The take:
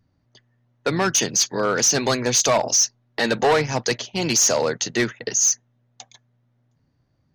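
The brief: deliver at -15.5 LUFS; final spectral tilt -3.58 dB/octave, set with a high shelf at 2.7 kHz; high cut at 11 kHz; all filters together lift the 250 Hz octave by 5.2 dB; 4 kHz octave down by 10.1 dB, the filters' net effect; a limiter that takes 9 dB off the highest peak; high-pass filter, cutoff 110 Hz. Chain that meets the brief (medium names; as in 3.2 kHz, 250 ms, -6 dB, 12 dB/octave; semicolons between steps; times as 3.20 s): high-pass 110 Hz; low-pass 11 kHz; peaking EQ 250 Hz +7 dB; treble shelf 2.7 kHz -6 dB; peaking EQ 4 kHz -8 dB; trim +10.5 dB; peak limiter -6.5 dBFS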